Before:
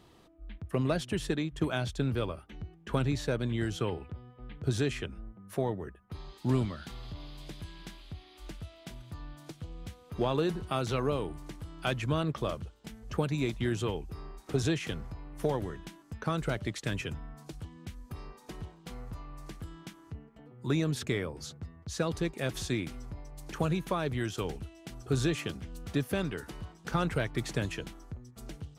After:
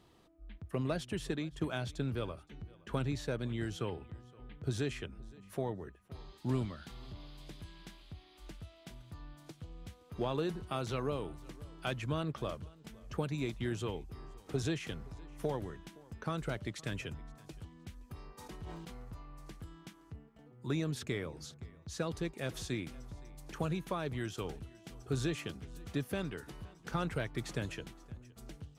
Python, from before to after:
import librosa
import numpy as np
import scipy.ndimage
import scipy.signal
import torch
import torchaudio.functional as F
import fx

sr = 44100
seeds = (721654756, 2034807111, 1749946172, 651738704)

y = fx.echo_feedback(x, sr, ms=518, feedback_pct=21, wet_db=-23.5)
y = fx.sustainer(y, sr, db_per_s=25.0, at=(18.37, 19.0), fade=0.02)
y = F.gain(torch.from_numpy(y), -5.5).numpy()